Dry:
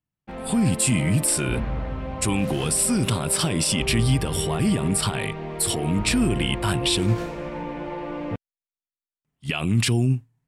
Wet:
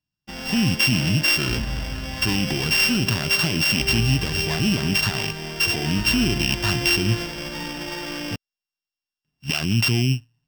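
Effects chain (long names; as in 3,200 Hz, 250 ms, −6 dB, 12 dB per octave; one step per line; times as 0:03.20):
samples sorted by size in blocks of 16 samples
thirty-one-band graphic EQ 500 Hz −7 dB, 1,600 Hz +5 dB, 3,150 Hz +7 dB, 5,000 Hz +11 dB, 10,000 Hz −7 dB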